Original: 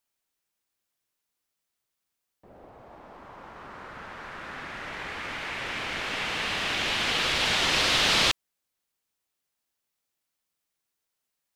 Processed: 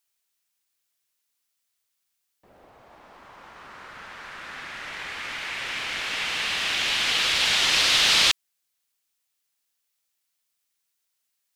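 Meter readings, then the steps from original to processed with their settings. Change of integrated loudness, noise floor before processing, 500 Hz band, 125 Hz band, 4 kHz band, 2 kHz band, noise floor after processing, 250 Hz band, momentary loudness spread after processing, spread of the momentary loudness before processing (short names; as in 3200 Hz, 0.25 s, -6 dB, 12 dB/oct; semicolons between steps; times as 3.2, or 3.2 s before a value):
+4.0 dB, -83 dBFS, -4.0 dB, -6.0 dB, +4.5 dB, +2.5 dB, -78 dBFS, -5.5 dB, 21 LU, 21 LU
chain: tilt shelf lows -6 dB, about 1300 Hz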